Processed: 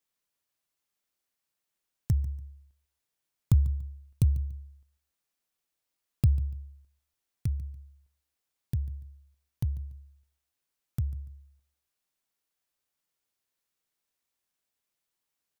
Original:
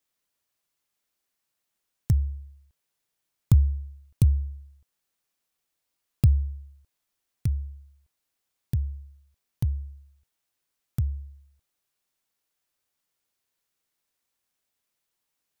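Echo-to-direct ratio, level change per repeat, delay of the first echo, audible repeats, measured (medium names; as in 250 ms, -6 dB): -17.5 dB, -11.0 dB, 144 ms, 2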